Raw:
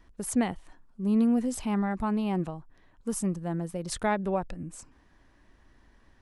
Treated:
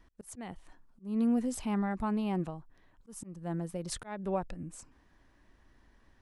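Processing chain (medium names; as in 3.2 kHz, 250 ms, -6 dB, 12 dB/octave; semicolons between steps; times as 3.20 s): slow attack 279 ms; trim -3.5 dB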